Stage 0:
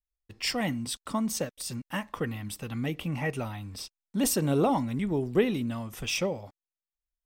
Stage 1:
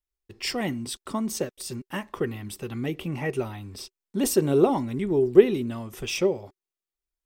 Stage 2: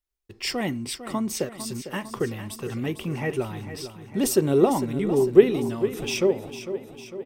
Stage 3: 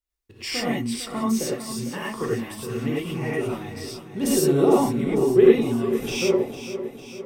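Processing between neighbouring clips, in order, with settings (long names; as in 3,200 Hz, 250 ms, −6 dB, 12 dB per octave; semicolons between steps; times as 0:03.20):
parametric band 380 Hz +14 dB 0.31 octaves
repeating echo 452 ms, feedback 57%, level −11.5 dB; level +1 dB
reverb whose tail is shaped and stops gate 130 ms rising, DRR −6 dB; level −5 dB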